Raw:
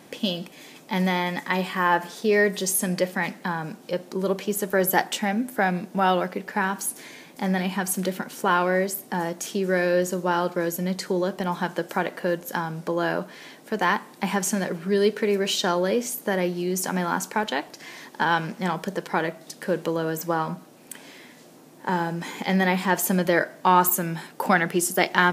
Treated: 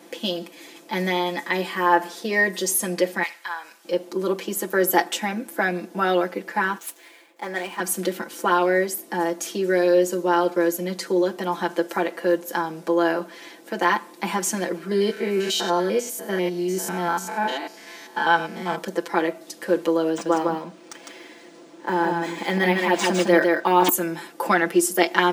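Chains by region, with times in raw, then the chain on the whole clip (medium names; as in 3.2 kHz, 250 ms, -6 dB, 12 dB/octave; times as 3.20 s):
3.23–3.85 s: high-pass 1.2 kHz + flutter echo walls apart 10.8 m, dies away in 0.24 s
6.78–7.80 s: median filter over 9 samples + high-pass 420 Hz + three bands expanded up and down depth 40%
14.91–18.78 s: spectrogram pixelated in time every 100 ms + comb 4.6 ms, depth 51%
20.10–23.89 s: delay 155 ms -3.5 dB + decimation joined by straight lines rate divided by 3×
whole clip: Chebyshev high-pass 270 Hz, order 3; bass shelf 380 Hz +5 dB; comb 5.9 ms, depth 86%; trim -1 dB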